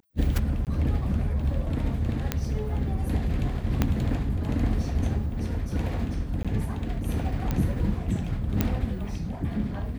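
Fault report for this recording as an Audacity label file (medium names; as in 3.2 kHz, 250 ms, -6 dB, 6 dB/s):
0.650000	0.670000	dropout 18 ms
2.320000	2.320000	pop -10 dBFS
3.820000	3.820000	pop -9 dBFS
6.430000	6.450000	dropout 16 ms
7.510000	7.510000	pop -14 dBFS
8.610000	8.610000	pop -9 dBFS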